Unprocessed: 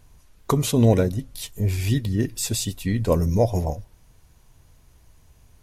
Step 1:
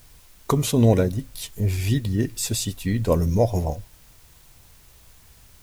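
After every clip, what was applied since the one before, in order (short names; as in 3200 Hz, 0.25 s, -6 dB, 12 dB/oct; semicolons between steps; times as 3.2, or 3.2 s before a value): added noise white -55 dBFS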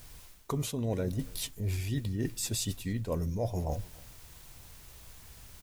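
reverse; compressor 6:1, threshold -30 dBFS, peak gain reduction 17 dB; reverse; outdoor echo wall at 49 m, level -24 dB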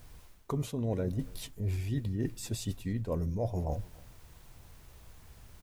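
high shelf 2100 Hz -9 dB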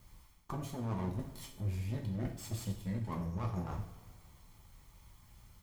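minimum comb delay 0.93 ms; two-slope reverb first 0.5 s, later 2.3 s, DRR 1 dB; gain -6.5 dB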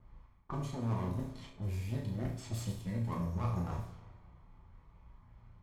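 low-pass opened by the level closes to 1200 Hz, open at -34 dBFS; flutter echo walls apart 5.9 m, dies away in 0.33 s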